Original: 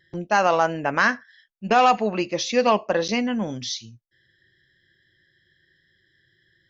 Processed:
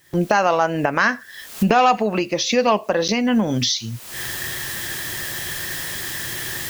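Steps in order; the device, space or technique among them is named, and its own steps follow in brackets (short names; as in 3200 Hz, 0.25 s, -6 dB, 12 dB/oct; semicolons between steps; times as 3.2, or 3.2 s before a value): cheap recorder with automatic gain (white noise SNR 37 dB; recorder AGC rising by 53 dB/s); gain +1.5 dB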